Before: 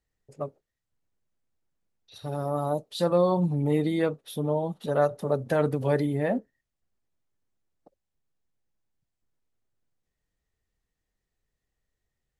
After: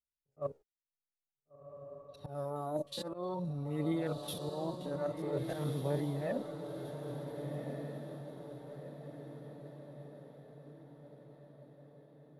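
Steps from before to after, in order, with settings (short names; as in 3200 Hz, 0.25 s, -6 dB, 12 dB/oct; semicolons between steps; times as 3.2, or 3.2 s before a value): stepped spectrum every 50 ms; gate -51 dBFS, range -28 dB; auto swell 0.126 s; reverse; compressor 6:1, threshold -36 dBFS, peak gain reduction 15.5 dB; reverse; phaser 0.51 Hz, delay 3.8 ms, feedback 47%; on a send: diffused feedback echo 1.478 s, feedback 53%, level -5.5 dB; on the sum: mismatched tape noise reduction decoder only; gain +1 dB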